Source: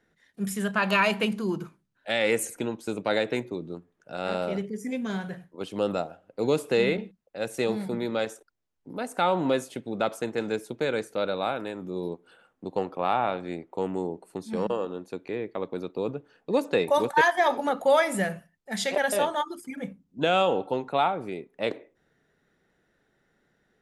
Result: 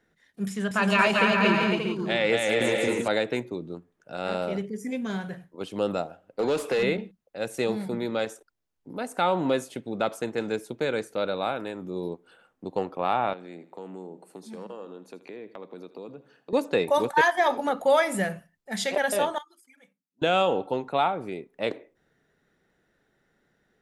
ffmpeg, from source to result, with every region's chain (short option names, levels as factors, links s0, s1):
-filter_complex "[0:a]asettb=1/sr,asplit=3[s0][s1][s2];[s0]atrim=end=0.484[s3];[s1]atrim=start=0.48:end=3.08,asetpts=PTS-STARTPTS,afade=t=in:d=0.004:c=qsin,afade=t=out:st=2.596:d=0.004:c=qsin,lowpass=6300,aecho=1:1:230|391|503.7|582.6|637.8|676.5:0.794|0.631|0.501|0.398|0.316|0.251,atrim=end_sample=114660[s4];[s2]atrim=start=3.076[s5];[s3][s4]acrossfade=d=0.004:c1=hsin:c2=qsin[s6];[s6][s5]acrossfade=d=0.004:c1=qsin:c2=hsin,asettb=1/sr,asplit=3[s7][s8][s9];[s7]atrim=end=6.394[s10];[s8]atrim=start=6.39:end=6.83,asetpts=PTS-STARTPTS,afade=t=in:d=0.004:c=qsin,afade=t=out:st=0.436:d=0.004:c=qsin,highshelf=f=2300:g=5.5,acompressor=threshold=0.0447:ratio=2:attack=3.2:release=140:knee=1:detection=peak,asplit=2[s11][s12];[s12]highpass=f=720:p=1,volume=8.91,asoftclip=type=tanh:threshold=0.168[s13];[s11][s13]amix=inputs=2:normalize=0,lowpass=f=1700:p=1,volume=0.501[s14];[s9]atrim=start=6.826[s15];[s10][s14]acrossfade=d=0.004:c1=hsin:c2=qsin[s16];[s16][s15]acrossfade=d=0.004:c1=qsin:c2=hsin,asettb=1/sr,asplit=3[s17][s18][s19];[s17]atrim=end=13.334[s20];[s18]atrim=start=13.33:end=16.53,asetpts=PTS-STARTPTS,afade=t=in:d=0.004:c=qsin,afade=t=out:st=3.196:d=0.004:c=qsin,highpass=f=150:w=0.5412,highpass=f=150:w=1.3066,acompressor=threshold=0.00891:ratio=2.5:attack=3.2:release=140:knee=1:detection=peak,aecho=1:1:80|160|240|320:0.178|0.0747|0.0314|0.0132,atrim=end_sample=141120[s21];[s19]atrim=start=16.526[s22];[s20][s21]acrossfade=d=0.004:c1=hsin:c2=qsin[s23];[s23][s22]acrossfade=d=0.004:c1=qsin:c2=hsin,asettb=1/sr,asplit=3[s24][s25][s26];[s24]atrim=end=19.384[s27];[s25]atrim=start=19.38:end=20.22,asetpts=PTS-STARTPTS,afade=t=in:d=0.004:c=qsin,afade=t=out:st=0.836:d=0.004:c=qsin,lowpass=f=2000:p=1,aderivative[s28];[s26]atrim=start=20.216[s29];[s27][s28]acrossfade=d=0.004:c1=hsin:c2=qsin[s30];[s30][s29]acrossfade=d=0.004:c1=qsin:c2=hsin"